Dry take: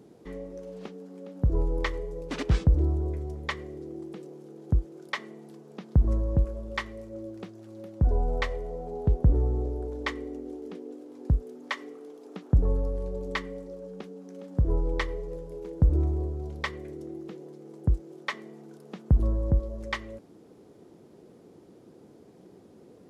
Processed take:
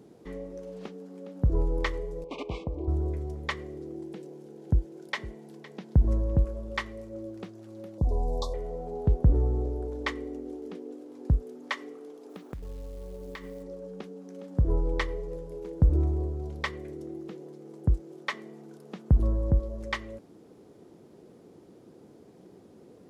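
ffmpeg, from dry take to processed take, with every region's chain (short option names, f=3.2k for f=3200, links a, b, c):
-filter_complex "[0:a]asettb=1/sr,asplit=3[a][b][c];[a]atrim=end=2.244[d];[b]atrim=start=2.24:end=2.88,asetpts=PTS-STARTPTS,afade=t=in:d=0.004:c=qsin,afade=t=out:st=0.636:d=0.004:c=qsin,asuperstop=centerf=1600:order=20:qfactor=1.7,bass=f=250:g=-15,treble=f=4k:g=-15[e];[c]atrim=start=2.876[f];[d][e]acrossfade=d=0.004:c1=hsin:c2=qsin[g];[g][f]acrossfade=d=0.004:c1=qsin:c2=hsin,asettb=1/sr,asplit=3[h][i][j];[h]atrim=end=3.954[k];[i]atrim=start=3.95:end=6.32,asetpts=PTS-STARTPTS,afade=t=in:d=0.004:c=qsin,afade=t=out:st=2.366:d=0.004:c=qsin,bandreject=f=1.2k:w=6.7,aecho=1:1:510:0.126,atrim=end_sample=104517[l];[j]atrim=start=6.316[m];[k][l]acrossfade=d=0.004:c1=hsin:c2=qsin[n];[n][m]acrossfade=d=0.004:c1=qsin:c2=hsin,asettb=1/sr,asplit=3[o][p][q];[o]atrim=end=7.984[r];[p]atrim=start=7.98:end=8.54,asetpts=PTS-STARTPTS,afade=t=in:d=0.004:c=qsin,afade=t=out:st=0.556:d=0.004:c=qsin,highshelf=f=3.1k:g=8,acompressor=threshold=-26dB:ratio=1.5:attack=3.2:release=140:knee=1:detection=peak,asuperstop=centerf=2000:order=20:qfactor=0.84[s];[q]atrim=start=8.536[t];[r][s]acrossfade=d=0.004:c1=hsin:c2=qsin[u];[u][t]acrossfade=d=0.004:c1=qsin:c2=hsin,asettb=1/sr,asplit=3[v][w][x];[v]atrim=end=12.294[y];[w]atrim=start=12.29:end=13.63,asetpts=PTS-STARTPTS,afade=t=in:d=0.004:c=qsin,afade=t=out:st=1.336:d=0.004:c=qsin,acompressor=threshold=-36dB:ratio=10:attack=3.2:release=140:knee=1:detection=peak,acrusher=bits=6:mode=log:mix=0:aa=0.000001[z];[x]atrim=start=13.626[aa];[y][z]acrossfade=d=0.004:c1=hsin:c2=qsin[ab];[ab][aa]acrossfade=d=0.004:c1=qsin:c2=hsin"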